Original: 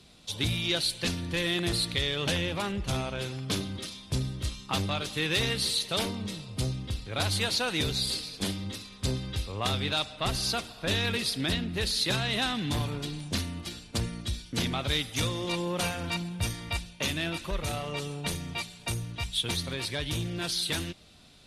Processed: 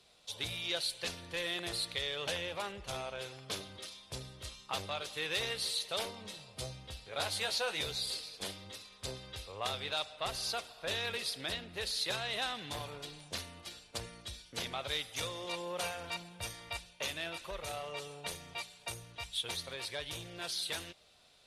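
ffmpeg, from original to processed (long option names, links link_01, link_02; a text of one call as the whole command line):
ffmpeg -i in.wav -filter_complex "[0:a]asettb=1/sr,asplit=3[link_01][link_02][link_03];[link_01]atrim=end=6.154[link_04];[link_02]atrim=start=6.15:end=7.96,asetpts=PTS-STARTPTS,afade=type=in:duration=0.004:curve=qsin,afade=type=out:start_time=1.806:duration=0.004:curve=qsin,asplit=2[link_05][link_06];[link_06]adelay=14,volume=-6dB[link_07];[link_05][link_07]amix=inputs=2:normalize=0,atrim=end_sample=79821[link_08];[link_03]atrim=start=7.956[link_09];[link_04][link_08]acrossfade=duration=0.004:curve1=hsin:curve2=qsin[link_10];[link_10][link_09]acrossfade=duration=0.004:curve1=qsin:curve2=hsin,lowshelf=frequency=370:width_type=q:width=1.5:gain=-9.5,volume=-7dB" out.wav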